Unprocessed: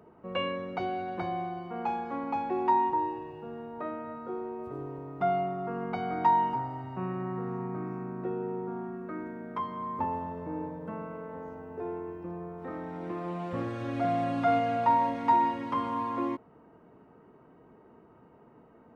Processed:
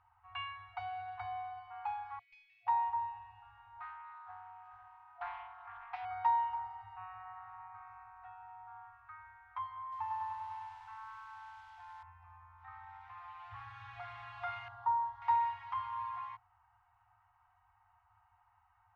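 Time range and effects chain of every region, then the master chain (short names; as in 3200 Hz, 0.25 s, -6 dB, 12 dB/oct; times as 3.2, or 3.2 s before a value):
2.19–2.67 Chebyshev high-pass 2200 Hz, order 5 + tube stage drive 40 dB, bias 0.6
3.8–6.05 HPF 230 Hz 24 dB/oct + Doppler distortion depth 0.25 ms
9.82–12.03 low shelf 340 Hz -10.5 dB + lo-fi delay 99 ms, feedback 80%, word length 9-bit, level -3.5 dB
14.68–15.22 LPF 1800 Hz 6 dB/oct + fixed phaser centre 990 Hz, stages 4
whole clip: FFT band-reject 110–700 Hz; LPF 3600 Hz 12 dB/oct; gain -6.5 dB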